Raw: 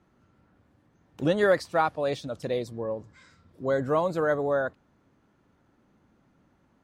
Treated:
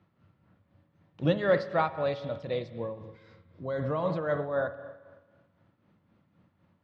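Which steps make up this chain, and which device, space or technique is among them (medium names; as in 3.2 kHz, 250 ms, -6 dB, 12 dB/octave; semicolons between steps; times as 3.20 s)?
combo amplifier with spring reverb and tremolo (spring tank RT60 1.4 s, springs 39/55 ms, chirp 80 ms, DRR 8.5 dB; tremolo 3.9 Hz, depth 54%; cabinet simulation 93–4400 Hz, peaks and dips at 94 Hz +9 dB, 160 Hz +5 dB, 260 Hz -5 dB, 400 Hz -6 dB, 790 Hz -4 dB, 1.5 kHz -4 dB)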